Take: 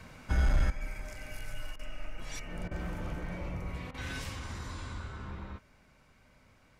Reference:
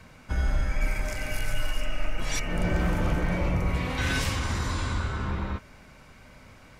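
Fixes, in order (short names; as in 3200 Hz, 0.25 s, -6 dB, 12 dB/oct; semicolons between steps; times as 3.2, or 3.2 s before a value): clip repair -20.5 dBFS; interpolate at 1.76/2.68/3.91, 31 ms; gain correction +12 dB, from 0.7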